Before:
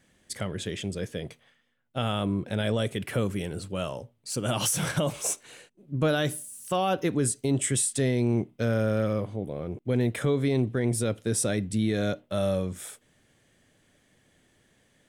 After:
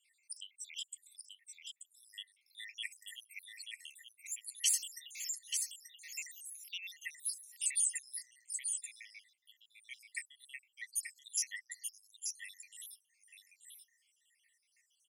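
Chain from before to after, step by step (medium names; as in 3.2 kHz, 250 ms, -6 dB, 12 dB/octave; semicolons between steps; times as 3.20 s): random holes in the spectrogram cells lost 81%; brick-wall FIR high-pass 1.8 kHz; peaking EQ 3.6 kHz -5.5 dB 0.43 oct; delay 883 ms -5.5 dB; trim +1.5 dB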